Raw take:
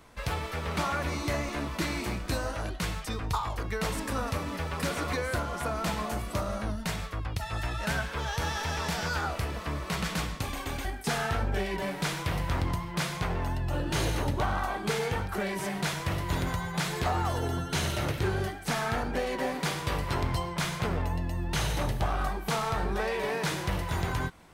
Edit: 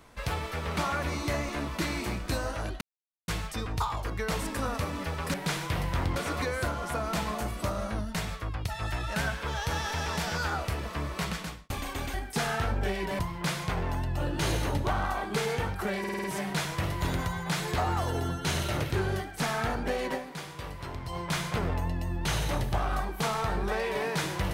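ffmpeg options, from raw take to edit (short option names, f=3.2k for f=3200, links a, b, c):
-filter_complex "[0:a]asplit=13[a][b][c][d][e][f][g][h][i][j][k][l][m];[a]atrim=end=2.81,asetpts=PTS-STARTPTS,afade=t=out:st=2.806:d=0.004:c=hsin,apad=pad_dur=0.47[n];[b]atrim=start=2.81:end=4.872,asetpts=PTS-STARTPTS,afade=t=in:d=0.004:c=hsin[o];[c]atrim=start=11.898:end=12.722[p];[d]atrim=start=4.868:end=10.41,asetpts=PTS-STARTPTS,afade=t=out:st=5.052:d=0.49[q];[e]atrim=start=10.41:end=11.902,asetpts=PTS-STARTPTS,afade=t=in:d=0.004:c=hsin[r];[f]atrim=start=12.718:end=15.572[s];[g]atrim=start=15.518:end=15.572[t];[h]atrim=start=15.518:end=15.572[u];[i]atrim=start=15.518:end=15.572[v];[j]atrim=start=15.518:end=15.572[w];[k]atrim=start=15.518:end=19.76,asetpts=PTS-STARTPTS,afade=t=out:st=3.902:d=0.34:c=exp:silence=0.354813[x];[l]atrim=start=19.76:end=20.1,asetpts=PTS-STARTPTS,volume=-9dB[y];[m]atrim=start=20.1,asetpts=PTS-STARTPTS,afade=t=in:d=0.34:c=exp:silence=0.354813[z];[n][o]concat=n=2:v=0:a=1[aa];[aa][p]acrossfade=d=0.004:c1=hsin:c2=hsin[ab];[q][r]concat=n=2:v=0:a=1[ac];[ab][ac]acrossfade=d=0.004:c1=hsin:c2=hsin[ad];[ad][s]acrossfade=d=0.004:c1=hsin:c2=hsin[ae];[ae][t]acrossfade=d=0.004:c1=hsin:c2=hsin[af];[af][u]acrossfade=d=0.004:c1=hsin:c2=hsin[ag];[ag][v]acrossfade=d=0.004:c1=hsin:c2=hsin[ah];[ah][w]acrossfade=d=0.004:c1=hsin:c2=hsin[ai];[x][y][z]concat=n=3:v=0:a=1[aj];[ai][aj]acrossfade=d=0.004:c1=hsin:c2=hsin"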